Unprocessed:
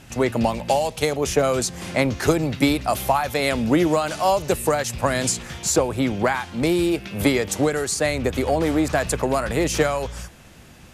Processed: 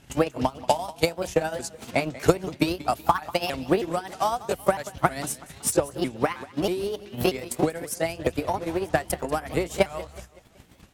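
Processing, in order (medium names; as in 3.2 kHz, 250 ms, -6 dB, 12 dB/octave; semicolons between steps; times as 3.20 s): sawtooth pitch modulation +5 st, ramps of 318 ms; transient shaper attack +11 dB, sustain -8 dB; modulated delay 188 ms, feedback 44%, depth 128 cents, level -18 dB; trim -8.5 dB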